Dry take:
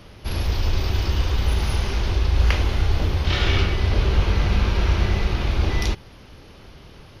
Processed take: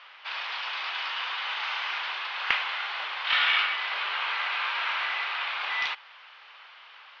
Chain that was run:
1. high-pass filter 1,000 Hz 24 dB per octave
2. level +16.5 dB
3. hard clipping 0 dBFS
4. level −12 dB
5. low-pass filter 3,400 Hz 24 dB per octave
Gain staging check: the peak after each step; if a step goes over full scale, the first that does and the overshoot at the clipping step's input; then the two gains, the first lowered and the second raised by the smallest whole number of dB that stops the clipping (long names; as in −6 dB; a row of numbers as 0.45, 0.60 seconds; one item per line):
−7.0, +9.5, 0.0, −12.0, −10.5 dBFS
step 2, 9.5 dB
step 2 +6.5 dB, step 4 −2 dB